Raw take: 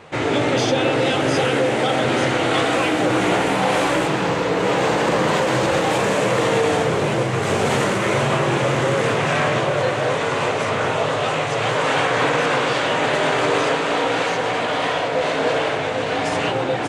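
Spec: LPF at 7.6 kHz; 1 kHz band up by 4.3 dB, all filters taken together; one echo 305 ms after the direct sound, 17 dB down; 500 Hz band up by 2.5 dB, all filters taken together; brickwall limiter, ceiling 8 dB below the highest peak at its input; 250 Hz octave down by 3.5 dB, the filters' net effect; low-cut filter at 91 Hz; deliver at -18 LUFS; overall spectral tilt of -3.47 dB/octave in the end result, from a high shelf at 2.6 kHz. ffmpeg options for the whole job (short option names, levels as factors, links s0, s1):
-af "highpass=91,lowpass=7600,equalizer=f=250:t=o:g=-6.5,equalizer=f=500:t=o:g=3,equalizer=f=1000:t=o:g=4,highshelf=f=2600:g=6,alimiter=limit=0.266:level=0:latency=1,aecho=1:1:305:0.141,volume=1.19"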